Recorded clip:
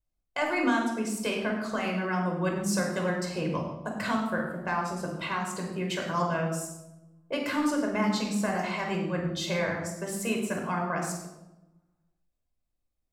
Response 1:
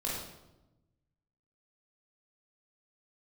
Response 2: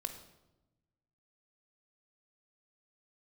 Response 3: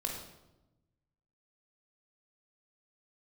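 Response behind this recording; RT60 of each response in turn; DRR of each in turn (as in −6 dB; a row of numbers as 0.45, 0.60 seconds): 3; 1.0, 1.0, 1.0 seconds; −5.5, 7.0, 0.5 decibels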